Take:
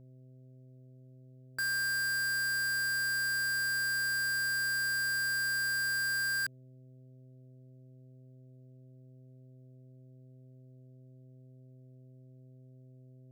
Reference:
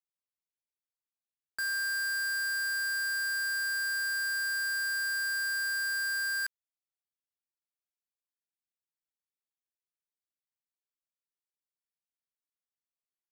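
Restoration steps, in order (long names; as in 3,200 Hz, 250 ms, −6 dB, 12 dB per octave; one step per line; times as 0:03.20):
hum removal 128.7 Hz, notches 5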